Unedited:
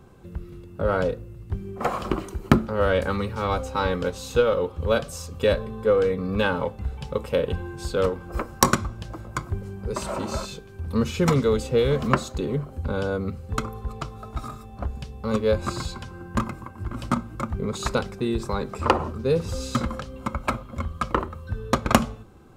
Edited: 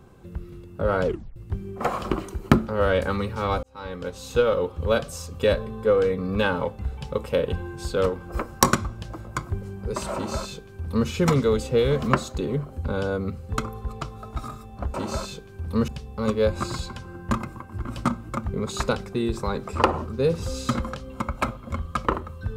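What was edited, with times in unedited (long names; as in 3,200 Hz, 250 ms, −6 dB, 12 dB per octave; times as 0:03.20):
0:01.06: tape stop 0.30 s
0:03.63–0:04.46: fade in
0:10.14–0:11.08: duplicate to 0:14.94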